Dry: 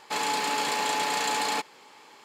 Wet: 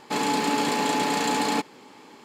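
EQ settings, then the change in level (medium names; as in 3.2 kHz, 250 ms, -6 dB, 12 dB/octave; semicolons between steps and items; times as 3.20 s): peaking EQ 260 Hz +7 dB 0.91 oct; bass shelf 370 Hz +11.5 dB; 0.0 dB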